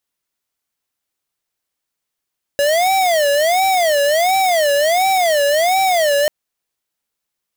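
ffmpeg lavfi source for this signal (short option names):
-f lavfi -i "aevalsrc='0.188*(2*lt(mod((669.5*t-102.5/(2*PI*1.4)*sin(2*PI*1.4*t)),1),0.5)-1)':d=3.69:s=44100"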